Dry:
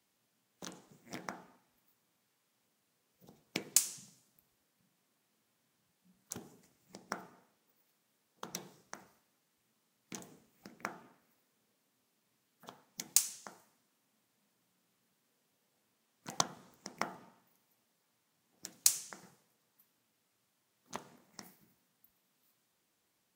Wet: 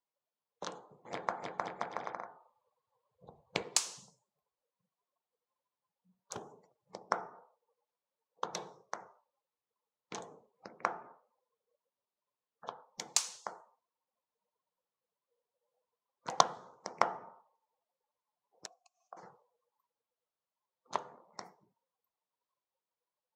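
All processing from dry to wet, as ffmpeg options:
-filter_complex "[0:a]asettb=1/sr,asplit=3[a][b][c];[a]atrim=end=0.744[d];[b]atrim=start=0.74:end=3.64,asetpts=PTS-STARTPTS,afade=t=in:d=0.004:c=qsin,afade=t=out:st=2.896:d=0.004:c=qsin,bandreject=f=5.5k:w=6.1,asubboost=boost=4.5:cutoff=140,aecho=1:1:310|527|678.9|785.2|859.7|911.8|948.2:0.794|0.631|0.501|0.398|0.316|0.251|0.2,atrim=end_sample=127890[e];[c]atrim=start=3.636[f];[d][e]acrossfade=d=0.004:c1=hsin:c2=qsin[g];[g][f]acrossfade=d=0.004:c1=qsin:c2=hsin,asettb=1/sr,asplit=3[h][i][j];[h]atrim=end=18.664[k];[i]atrim=start=18.66:end=19.17,asetpts=PTS-STARTPTS,afade=t=in:d=0.004:c=qsin,afade=t=out:st=0.506:d=0.004:c=qsin,bass=f=250:g=13,treble=f=4k:g=13,acompressor=threshold=-34dB:ratio=12:attack=3.2:release=140:knee=1:detection=peak,asplit=3[l][m][n];[l]bandpass=f=730:t=q:w=8,volume=0dB[o];[m]bandpass=f=1.09k:t=q:w=8,volume=-6dB[p];[n]bandpass=f=2.44k:t=q:w=8,volume=-9dB[q];[o][p][q]amix=inputs=3:normalize=0[r];[j]atrim=start=19.166[s];[k][r]acrossfade=d=0.004:c1=hsin:c2=qsin[t];[t][s]acrossfade=d=0.004:c1=qsin:c2=hsin,equalizer=f=250:t=o:w=1:g=-6,equalizer=f=500:t=o:w=1:g=9,equalizer=f=1k:t=o:w=1:g=10,equalizer=f=4k:t=o:w=1:g=4,afftdn=nr=23:nf=-61,lowpass=6.6k"

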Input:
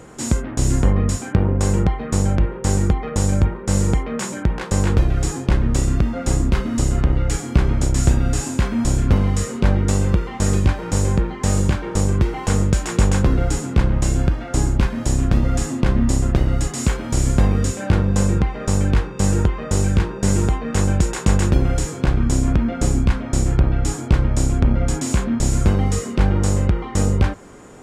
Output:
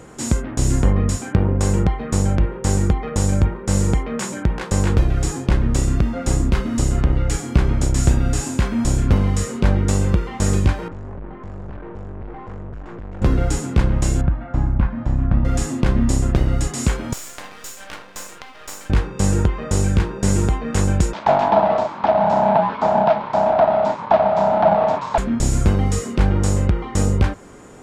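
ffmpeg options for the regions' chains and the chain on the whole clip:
-filter_complex "[0:a]asettb=1/sr,asplit=3[a][b][c];[a]atrim=end=10.884[d];[b]atrim=start=10.88:end=13.22,asetpts=PTS-STARTPTS,afade=t=in:d=0.004:c=qsin,afade=t=out:st=2.336:d=0.004:c=qsin,aeval=exprs='(tanh(35.5*val(0)+0.6)-tanh(0.6))/35.5':c=same,lowpass=1.4k[e];[c]atrim=start=13.216[f];[d][e]acrossfade=d=0.004:c1=hsin:c2=qsin[g];[g][f]acrossfade=d=0.004:c1=qsin:c2=hsin,asettb=1/sr,asplit=3[h][i][j];[h]atrim=end=14.214[k];[i]atrim=start=14.21:end=15.45,asetpts=PTS-STARTPTS,afade=t=in:d=0.004:c=qsin,afade=t=out:st=1.236:d=0.004:c=qsin,lowpass=1.4k,equalizer=f=410:w=2.3:g=-12[l];[j]atrim=start=15.446[m];[k][l]acrossfade=d=0.004:c1=hsin:c2=qsin[n];[n][m]acrossfade=d=0.004:c1=qsin:c2=hsin,asettb=1/sr,asplit=3[o][p][q];[o]atrim=end=17.134[r];[p]atrim=start=17.13:end=18.9,asetpts=PTS-STARTPTS,afade=t=in:d=0.004:c=qsin,afade=t=out:st=1.766:d=0.004:c=qsin,highpass=920,aeval=exprs='max(val(0),0)':c=same[s];[q]atrim=start=18.896[t];[r][s]acrossfade=d=0.004:c1=hsin:c2=qsin[u];[u][t]acrossfade=d=0.004:c1=qsin:c2=hsin,asettb=1/sr,asplit=3[v][w][x];[v]atrim=end=21.134[y];[w]atrim=start=21.13:end=25.18,asetpts=PTS-STARTPTS,afade=t=in:d=0.004:c=qsin,afade=t=out:st=4.046:d=0.004:c=qsin,afreqshift=270,aeval=exprs='abs(val(0))':c=same,highpass=150,equalizer=f=200:t=q:w=4:g=7,equalizer=f=600:t=q:w=4:g=9,equalizer=f=900:t=q:w=4:g=9,equalizer=f=2k:t=q:w=4:g=-4,equalizer=f=2.9k:t=q:w=4:g=-4,lowpass=f=4k:w=0.5412,lowpass=f=4k:w=1.3066[z];[x]atrim=start=25.176[aa];[y][z]acrossfade=d=0.004:c1=hsin:c2=qsin[ab];[ab][aa]acrossfade=d=0.004:c1=qsin:c2=hsin"

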